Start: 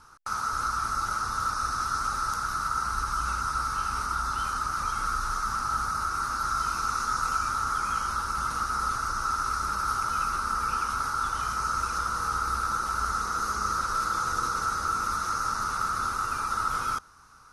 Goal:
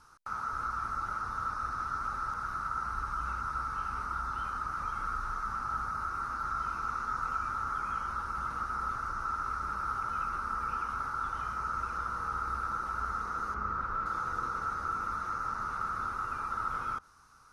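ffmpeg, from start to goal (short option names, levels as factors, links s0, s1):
-filter_complex "[0:a]acrossover=split=2700[s0][s1];[s1]acompressor=threshold=0.00141:ratio=4:attack=1:release=60[s2];[s0][s2]amix=inputs=2:normalize=0,asettb=1/sr,asplit=3[s3][s4][s5];[s3]atrim=end=13.544[s6];[s4]atrim=start=13.54:end=14.06,asetpts=PTS-STARTPTS,afade=t=in:d=0.004:c=qsin,afade=t=out:st=0.516:d=0.004:c=qsin,bass=f=250:g=3,treble=f=4000:g=-12[s7];[s5]atrim=start=14.056[s8];[s6][s7]acrossfade=d=0.004:c1=hsin:c2=qsin[s9];[s9][s8]acrossfade=d=0.004:c1=qsin:c2=hsin,volume=0.531"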